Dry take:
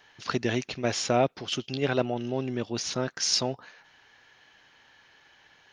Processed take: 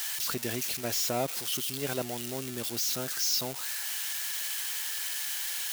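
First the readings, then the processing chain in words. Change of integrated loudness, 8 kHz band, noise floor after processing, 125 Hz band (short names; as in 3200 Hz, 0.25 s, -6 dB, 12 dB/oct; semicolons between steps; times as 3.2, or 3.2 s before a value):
-2.0 dB, +4.0 dB, -38 dBFS, -7.5 dB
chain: switching spikes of -16.5 dBFS; gain -7.5 dB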